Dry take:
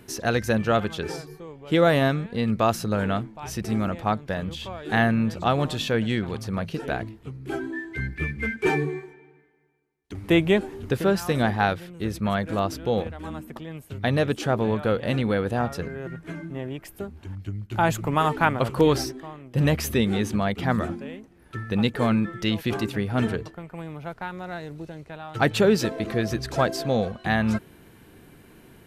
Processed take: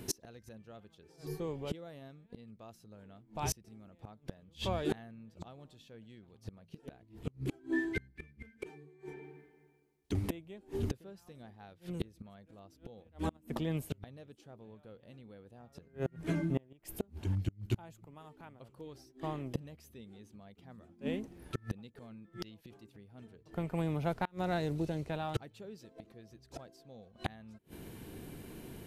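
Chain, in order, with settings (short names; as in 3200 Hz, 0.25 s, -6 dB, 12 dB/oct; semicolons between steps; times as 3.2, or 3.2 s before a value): bell 1500 Hz -7 dB 1.5 oct; flipped gate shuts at -24 dBFS, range -32 dB; gain +3 dB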